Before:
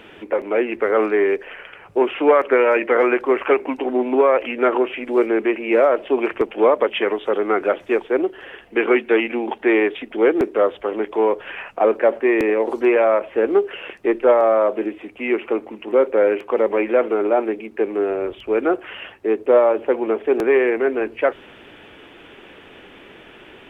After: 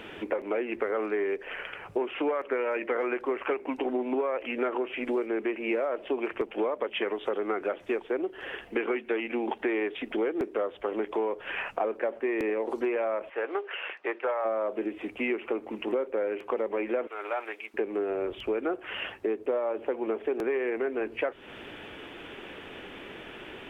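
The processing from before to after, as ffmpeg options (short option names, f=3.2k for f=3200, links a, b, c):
-filter_complex "[0:a]asplit=3[a][b][c];[a]afade=t=out:st=13.29:d=0.02[d];[b]highpass=790,lowpass=2.9k,afade=t=in:st=13.29:d=0.02,afade=t=out:st=14.44:d=0.02[e];[c]afade=t=in:st=14.44:d=0.02[f];[d][e][f]amix=inputs=3:normalize=0,asettb=1/sr,asplit=3[g][h][i];[g]atrim=end=17.074[j];[h]atrim=start=17.07:end=17.74,asetpts=PTS-STARTPTS,afade=t=in:d=0.004:c=qsin,afade=t=out:st=0.666:d=0.004:c=qsin,highpass=1.2k[k];[i]atrim=start=17.736[l];[j][k]acrossfade=d=0.004:c1=hsin:c2=qsin[m];[m][l]acrossfade=d=0.004:c1=qsin:c2=hsin,acompressor=threshold=-27dB:ratio=6"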